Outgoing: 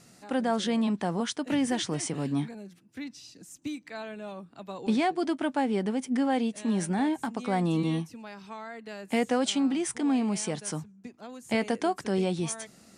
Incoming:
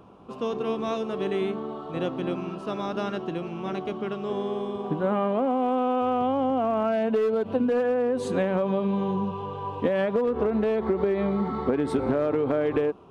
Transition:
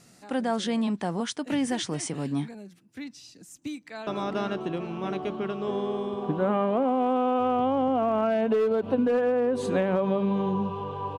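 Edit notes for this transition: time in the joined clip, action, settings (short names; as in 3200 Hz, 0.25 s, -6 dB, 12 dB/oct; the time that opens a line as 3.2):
outgoing
3.7–4.07 echo throw 0.45 s, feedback 50%, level -9 dB
4.07 switch to incoming from 2.69 s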